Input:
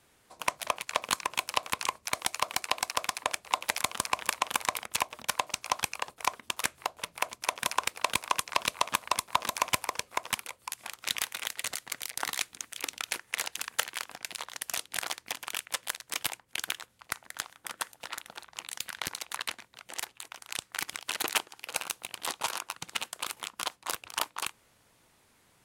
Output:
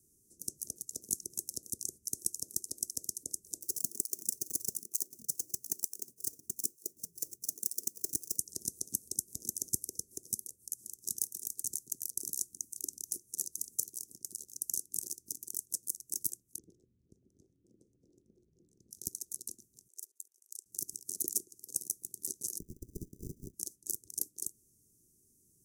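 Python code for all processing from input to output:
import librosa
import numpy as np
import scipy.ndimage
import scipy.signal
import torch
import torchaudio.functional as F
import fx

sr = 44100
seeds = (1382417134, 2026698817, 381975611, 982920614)

y = fx.chain(x, sr, fx.halfwave_hold(),
    fx.low_shelf(hz=190.0, db=-11.0),
    fx.flanger_cancel(hz=1.1, depth_ms=5.2), at=(3.61, 8.38))
y = fx.chain(y, sr, fx.lowpass(hz=1200.0, slope=12),
    fx.transient(attack_db=-6, sustain_db=3), at=(16.58, 18.91))
y = fx.chain(y, sr, fx.highpass(hz=430.0, slope=24),
    fx.level_steps(step_db=21), at=(19.88, 20.66))
y = fx.chain(y, sr, fx.ripple_eq(per_octave=1.0, db=7),
    fx.tube_stage(drive_db=28.0, bias=0.25),
    fx.sample_hold(seeds[0], rate_hz=1100.0, jitter_pct=0), at=(22.59, 23.54))
y = scipy.signal.sosfilt(scipy.signal.cheby1(4, 1.0, [390.0, 5900.0], 'bandstop', fs=sr, output='sos'), y)
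y = fx.high_shelf(y, sr, hz=5200.0, db=6.5)
y = F.gain(torch.from_numpy(y), -3.5).numpy()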